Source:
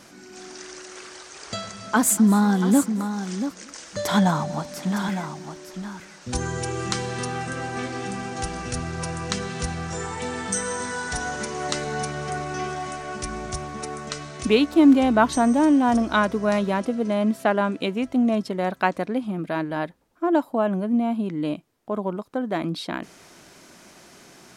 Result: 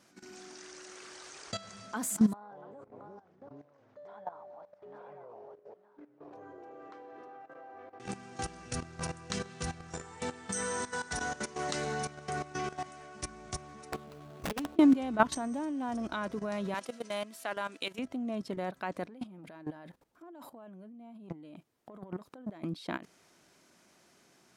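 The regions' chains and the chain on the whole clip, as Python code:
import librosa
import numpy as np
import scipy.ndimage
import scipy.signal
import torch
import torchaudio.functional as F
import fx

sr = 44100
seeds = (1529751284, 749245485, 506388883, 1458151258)

y = fx.chain(x, sr, fx.ladder_bandpass(hz=710.0, resonance_pct=45),
    fx.echo_pitch(ms=181, semitones=-6, count=2, db_per_echo=-6.0), at=(2.33, 8.0))
y = fx.chain(y, sr, fx.median_filter(points=25),
    fx.over_compress(threshold_db=-23.0, ratio=-0.5),
    fx.overflow_wrap(gain_db=19.0), at=(13.92, 14.79))
y = fx.chain(y, sr, fx.highpass(hz=910.0, slope=6),
    fx.high_shelf(hz=2900.0, db=8.5), at=(16.74, 17.99))
y = fx.chain(y, sr, fx.over_compress(threshold_db=-33.0, ratio=-1.0),
    fx.transformer_sat(knee_hz=730.0), at=(19.08, 22.64))
y = fx.highpass(y, sr, hz=62.0, slope=6)
y = fx.level_steps(y, sr, step_db=15)
y = F.gain(torch.from_numpy(y), -4.5).numpy()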